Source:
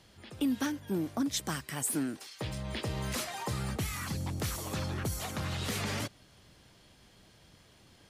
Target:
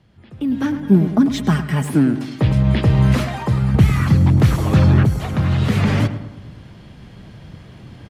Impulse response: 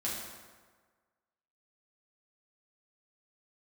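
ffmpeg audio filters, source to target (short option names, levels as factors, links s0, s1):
-filter_complex "[0:a]asettb=1/sr,asplit=3[s0][s1][s2];[s0]atrim=end=0.754[s3];[s1]atrim=start=0.75:end=1.9,asetpts=PTS-STARTPTS,afade=t=in:d=0.004:c=qsin,afade=t=out:st=1.146:d=0.004:c=qsin,aecho=1:1:4.8:0.65,atrim=end_sample=50715[s4];[s2]atrim=start=1.896[s5];[s3][s4]acrossfade=d=0.004:c1=hsin:c2=qsin[s6];[s6][s5]acrossfade=d=0.004:c1=qsin:c2=hsin,asplit=2[s7][s8];[s8]adelay=106,lowpass=f=2100:p=1,volume=0.282,asplit=2[s9][s10];[s10]adelay=106,lowpass=f=2100:p=1,volume=0.54,asplit=2[s11][s12];[s12]adelay=106,lowpass=f=2100:p=1,volume=0.54,asplit=2[s13][s14];[s14]adelay=106,lowpass=f=2100:p=1,volume=0.54,asplit=2[s15][s16];[s16]adelay=106,lowpass=f=2100:p=1,volume=0.54,asplit=2[s17][s18];[s18]adelay=106,lowpass=f=2100:p=1,volume=0.54[s19];[s7][s9][s11][s13][s15][s17][s19]amix=inputs=7:normalize=0,acrossover=split=5000[s20][s21];[s21]asoftclip=type=tanh:threshold=0.0211[s22];[s20][s22]amix=inputs=2:normalize=0,equalizer=f=140:w=0.7:g=7,asettb=1/sr,asplit=3[s23][s24][s25];[s23]atrim=end=3.744[s26];[s24]atrim=start=3.74:end=5.05,asetpts=PTS-STARTPTS,afade=t=in:d=0.004:c=qsin,afade=t=out:st=1.306:d=0.004:c=qsin,acontrast=54[s27];[s25]atrim=start=5.046[s28];[s26][s27]acrossfade=d=0.004:c1=hsin:c2=qsin[s29];[s29][s28]acrossfade=d=0.004:c1=qsin:c2=hsin,bass=f=250:g=4,treble=f=4000:g=-13,dynaudnorm=f=400:g=3:m=5.96,volume=0.891"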